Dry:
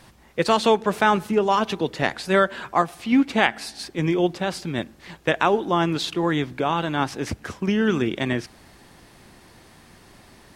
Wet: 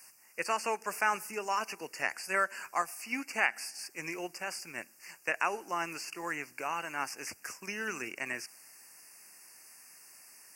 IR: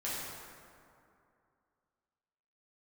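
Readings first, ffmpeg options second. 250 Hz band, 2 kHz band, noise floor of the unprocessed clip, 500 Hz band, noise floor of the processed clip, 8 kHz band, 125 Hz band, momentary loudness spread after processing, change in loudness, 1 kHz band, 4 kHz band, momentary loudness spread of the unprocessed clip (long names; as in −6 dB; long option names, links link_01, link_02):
−22.5 dB, −6.5 dB, −51 dBFS, −17.0 dB, −61 dBFS, −1.5 dB, −27.0 dB, 21 LU, −12.0 dB, −11.0 dB, −14.0 dB, 10 LU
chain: -filter_complex "[0:a]aderivative,acrossover=split=2900[link_01][link_02];[link_02]acompressor=threshold=-44dB:ratio=4:attack=1:release=60[link_03];[link_01][link_03]amix=inputs=2:normalize=0,asplit=2[link_04][link_05];[link_05]aeval=exprs='sgn(val(0))*max(abs(val(0))-0.00251,0)':channel_layout=same,volume=-10.5dB[link_06];[link_04][link_06]amix=inputs=2:normalize=0,asuperstop=centerf=3600:order=12:qfactor=2,volume=4dB"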